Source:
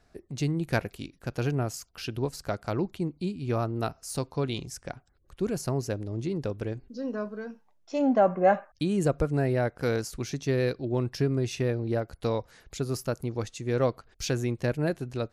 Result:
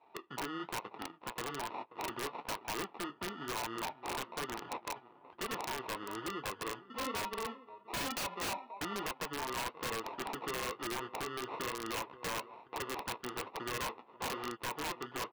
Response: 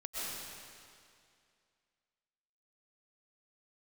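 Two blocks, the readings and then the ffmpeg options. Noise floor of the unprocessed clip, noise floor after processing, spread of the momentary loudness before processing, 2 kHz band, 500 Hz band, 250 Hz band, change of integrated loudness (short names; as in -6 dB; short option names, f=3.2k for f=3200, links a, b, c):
-65 dBFS, -62 dBFS, 10 LU, -2.5 dB, -14.5 dB, -15.0 dB, -10.0 dB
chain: -filter_complex "[0:a]acompressor=threshold=-31dB:ratio=16,acrusher=samples=28:mix=1:aa=0.000001,highpass=470,equalizer=f=580:t=q:w=4:g=-6,equalizer=f=940:t=q:w=4:g=8,equalizer=f=1.8k:t=q:w=4:g=-5,lowpass=f=3.1k:w=0.5412,lowpass=f=3.1k:w=1.3066,bandreject=f=2.2k:w=16,asplit=2[a][b];[b]adelay=532,lowpass=f=1.8k:p=1,volume=-19dB,asplit=2[c][d];[d]adelay=532,lowpass=f=1.8k:p=1,volume=0.48,asplit=2[e][f];[f]adelay=532,lowpass=f=1.8k:p=1,volume=0.48,asplit=2[g][h];[h]adelay=532,lowpass=f=1.8k:p=1,volume=0.48[i];[a][c][e][g][i]amix=inputs=5:normalize=0,flanger=delay=8.7:depth=8.2:regen=-41:speed=1.1:shape=sinusoidal,aeval=exprs='(mod(66.8*val(0)+1,2)-1)/66.8':c=same,deesser=0.8,volume=8dB"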